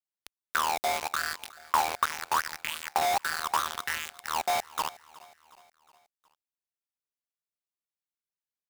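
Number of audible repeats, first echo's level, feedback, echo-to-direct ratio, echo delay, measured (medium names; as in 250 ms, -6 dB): 3, -21.0 dB, 52%, -19.5 dB, 365 ms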